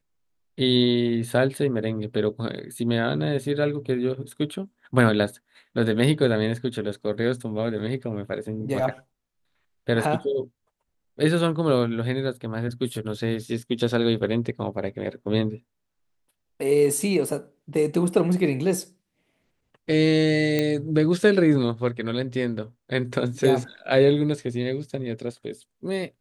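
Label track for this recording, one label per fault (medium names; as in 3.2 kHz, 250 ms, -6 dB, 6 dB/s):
20.590000	20.590000	pop -10 dBFS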